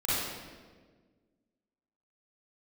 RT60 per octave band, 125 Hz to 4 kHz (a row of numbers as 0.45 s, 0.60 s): 1.9 s, 2.1 s, 1.7 s, 1.3 s, 1.2 s, 1.1 s